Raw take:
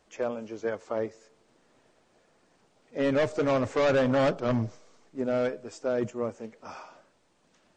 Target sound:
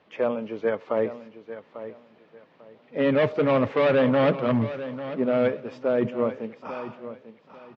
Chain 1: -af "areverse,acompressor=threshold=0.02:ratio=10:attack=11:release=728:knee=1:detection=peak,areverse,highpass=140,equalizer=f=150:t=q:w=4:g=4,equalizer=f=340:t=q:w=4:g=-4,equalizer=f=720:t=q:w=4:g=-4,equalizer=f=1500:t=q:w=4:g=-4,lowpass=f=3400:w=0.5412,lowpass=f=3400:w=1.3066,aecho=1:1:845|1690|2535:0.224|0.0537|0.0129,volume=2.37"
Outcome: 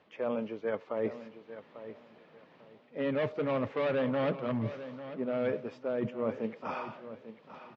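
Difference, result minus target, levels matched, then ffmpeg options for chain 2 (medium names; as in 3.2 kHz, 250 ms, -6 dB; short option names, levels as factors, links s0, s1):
compression: peak gain reduction +10 dB
-af "areverse,acompressor=threshold=0.0708:ratio=10:attack=11:release=728:knee=1:detection=peak,areverse,highpass=140,equalizer=f=150:t=q:w=4:g=4,equalizer=f=340:t=q:w=4:g=-4,equalizer=f=720:t=q:w=4:g=-4,equalizer=f=1500:t=q:w=4:g=-4,lowpass=f=3400:w=0.5412,lowpass=f=3400:w=1.3066,aecho=1:1:845|1690|2535:0.224|0.0537|0.0129,volume=2.37"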